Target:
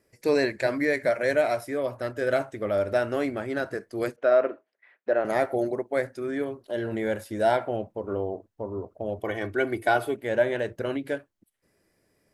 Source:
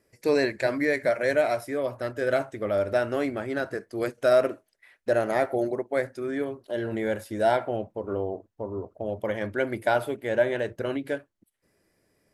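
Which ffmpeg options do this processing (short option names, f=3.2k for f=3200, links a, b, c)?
-filter_complex "[0:a]asettb=1/sr,asplit=3[a][b][c];[a]atrim=end=4.164[d];[b]atrim=start=4.16:end=5.25,asetpts=PTS-STARTPTS,afade=t=in:d=0.004:c=qsin,afade=t=out:st=1.086:d=0.004:c=qsin,highpass=300,lowpass=2.2k[e];[c]atrim=start=5.246[f];[d][e]acrossfade=d=0.004:c1=hsin:c2=qsin[g];[g][f]acrossfade=d=0.004:c1=qsin:c2=hsin,asettb=1/sr,asplit=3[h][i][j];[h]atrim=end=9.184[k];[i]atrim=start=9.18:end=10.14,asetpts=PTS-STARTPTS,afade=t=in:d=0.004:c=qsin,afade=t=out:st=0.956:d=0.004:c=qsin,aecho=1:1:2.7:0.57,atrim=end_sample=42336[l];[j]atrim=start=10.136[m];[k][l]acrossfade=d=0.004:c1=hsin:c2=qsin[n];[n][m]acrossfade=d=0.004:c1=qsin:c2=hsin"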